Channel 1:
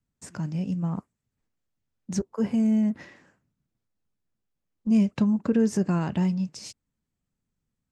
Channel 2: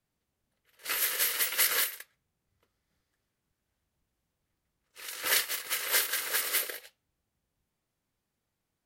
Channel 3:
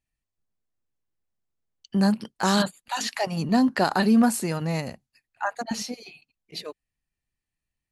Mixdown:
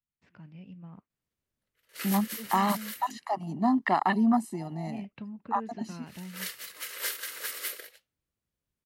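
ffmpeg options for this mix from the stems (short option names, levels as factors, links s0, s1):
-filter_complex "[0:a]lowpass=f=3800:w=0.5412,lowpass=f=3800:w=1.3066,equalizer=f=2500:w=1.1:g=9,volume=0.119,asplit=2[s0][s1];[1:a]equalizer=f=800:w=4.2:g=-6,adelay=1100,volume=0.501[s2];[2:a]afwtdn=0.0447,highpass=280,aecho=1:1:1:0.95,adelay=100,volume=0.668[s3];[s1]apad=whole_len=438889[s4];[s2][s4]sidechaincompress=threshold=0.00631:ratio=8:attack=11:release=1110[s5];[s0][s5][s3]amix=inputs=3:normalize=0"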